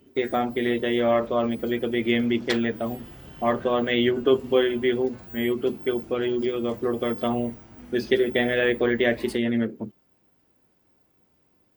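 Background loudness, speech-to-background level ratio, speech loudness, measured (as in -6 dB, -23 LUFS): -41.5 LUFS, 17.0 dB, -24.5 LUFS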